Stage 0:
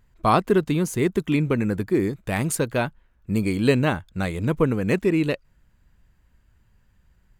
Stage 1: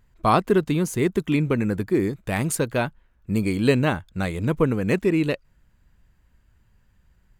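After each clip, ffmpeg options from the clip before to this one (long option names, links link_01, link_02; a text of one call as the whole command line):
ffmpeg -i in.wav -af anull out.wav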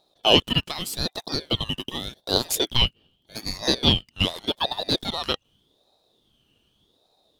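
ffmpeg -i in.wav -af "highpass=frequency=1500:width_type=q:width=4.4,aeval=exprs='val(0)*sin(2*PI*1800*n/s+1800*0.25/0.84*sin(2*PI*0.84*n/s))':channel_layout=same,volume=4.5dB" out.wav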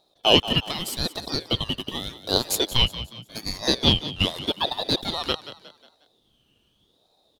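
ffmpeg -i in.wav -filter_complex "[0:a]asplit=5[link_01][link_02][link_03][link_04][link_05];[link_02]adelay=180,afreqshift=54,volume=-14dB[link_06];[link_03]adelay=360,afreqshift=108,volume=-21.7dB[link_07];[link_04]adelay=540,afreqshift=162,volume=-29.5dB[link_08];[link_05]adelay=720,afreqshift=216,volume=-37.2dB[link_09];[link_01][link_06][link_07][link_08][link_09]amix=inputs=5:normalize=0" out.wav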